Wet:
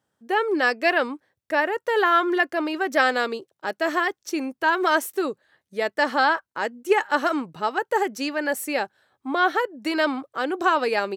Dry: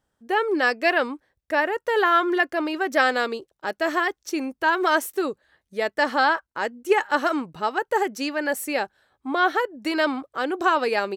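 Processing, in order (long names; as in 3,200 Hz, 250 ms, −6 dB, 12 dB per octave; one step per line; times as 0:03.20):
high-pass filter 94 Hz 24 dB per octave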